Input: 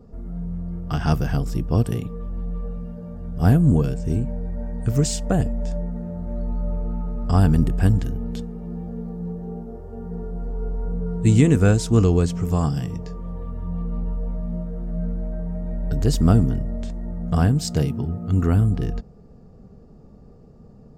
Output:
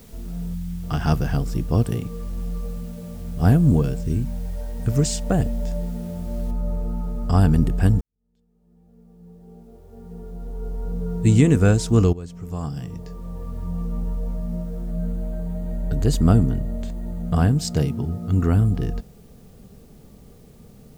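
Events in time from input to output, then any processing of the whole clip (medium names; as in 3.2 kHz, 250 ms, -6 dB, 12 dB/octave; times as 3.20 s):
0.54–0.83 s: time-frequency box 250–1800 Hz -16 dB
2.59–3.27 s: distance through air 130 m
4.02–4.78 s: peaking EQ 920 Hz -> 140 Hz -14.5 dB
6.51 s: noise floor step -53 dB -61 dB
8.01–11.17 s: fade in quadratic
12.13–13.59 s: fade in, from -18.5 dB
14.90–17.48 s: band-stop 5.4 kHz, Q 7.3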